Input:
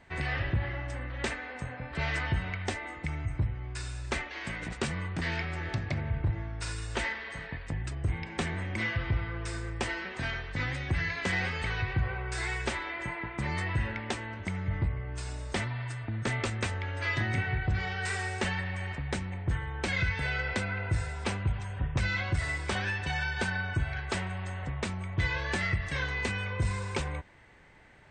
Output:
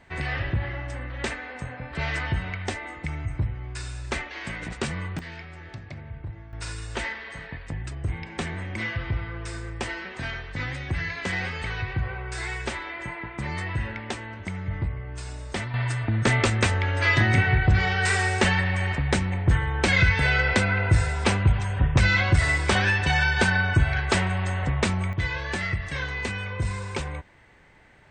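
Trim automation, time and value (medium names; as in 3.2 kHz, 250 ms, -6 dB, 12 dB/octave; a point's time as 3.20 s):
+3 dB
from 5.19 s -7 dB
from 6.53 s +1.5 dB
from 15.74 s +10 dB
from 25.13 s +2 dB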